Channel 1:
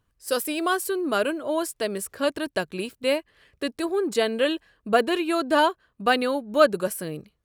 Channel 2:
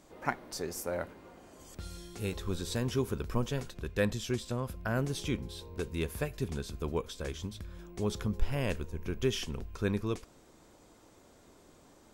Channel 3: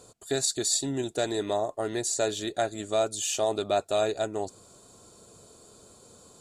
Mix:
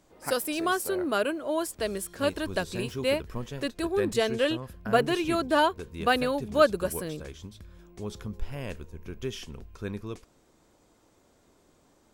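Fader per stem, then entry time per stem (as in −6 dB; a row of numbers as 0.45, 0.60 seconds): −3.0 dB, −4.0 dB, muted; 0.00 s, 0.00 s, muted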